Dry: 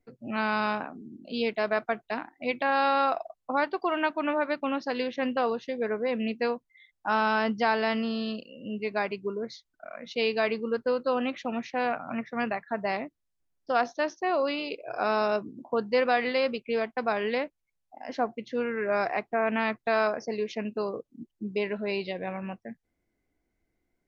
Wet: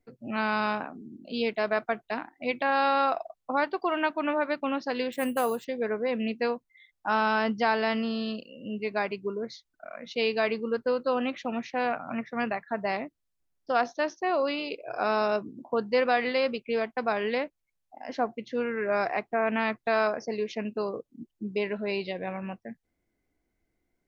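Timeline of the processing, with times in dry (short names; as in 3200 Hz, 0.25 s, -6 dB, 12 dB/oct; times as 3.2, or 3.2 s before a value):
5.12–5.65 careless resampling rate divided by 4×, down none, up hold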